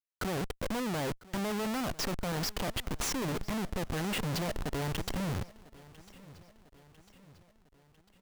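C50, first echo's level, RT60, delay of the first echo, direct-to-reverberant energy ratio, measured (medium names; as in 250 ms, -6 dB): no reverb, -21.0 dB, no reverb, 999 ms, no reverb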